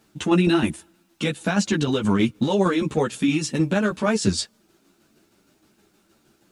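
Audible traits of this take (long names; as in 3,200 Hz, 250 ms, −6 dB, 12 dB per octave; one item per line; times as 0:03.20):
tremolo saw down 6.4 Hz, depth 50%
a quantiser's noise floor 12 bits, dither none
a shimmering, thickened sound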